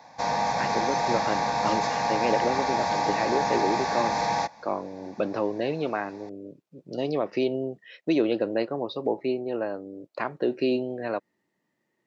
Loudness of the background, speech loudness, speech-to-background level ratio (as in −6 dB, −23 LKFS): −26.5 LKFS, −29.5 LKFS, −3.0 dB